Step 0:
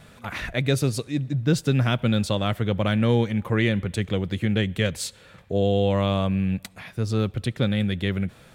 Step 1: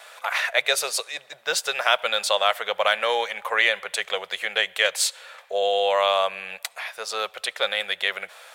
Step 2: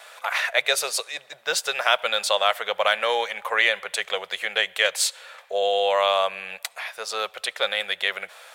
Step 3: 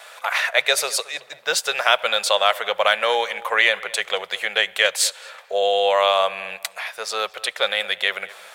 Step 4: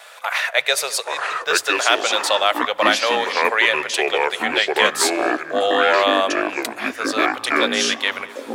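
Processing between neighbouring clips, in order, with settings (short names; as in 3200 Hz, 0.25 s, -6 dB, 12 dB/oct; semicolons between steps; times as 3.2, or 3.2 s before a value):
inverse Chebyshev high-pass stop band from 300 Hz, stop band 40 dB; gain +8.5 dB
nothing audible
darkening echo 0.22 s, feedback 28%, low-pass 2400 Hz, level -19 dB; gain +3 dB
echoes that change speed 0.73 s, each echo -6 st, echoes 2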